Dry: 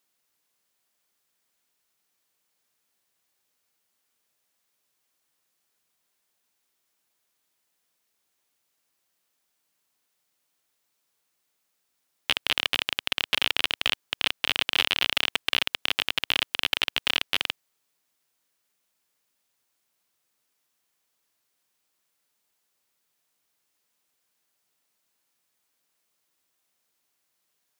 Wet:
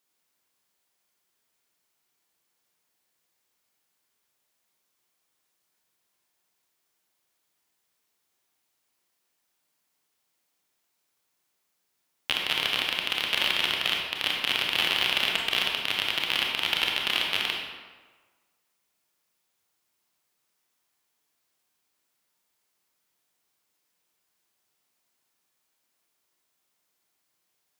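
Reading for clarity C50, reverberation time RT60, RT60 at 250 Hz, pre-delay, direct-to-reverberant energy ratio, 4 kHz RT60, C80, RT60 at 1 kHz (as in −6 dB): 1.0 dB, 1.4 s, 1.2 s, 25 ms, −1.0 dB, 0.90 s, 3.5 dB, 1.4 s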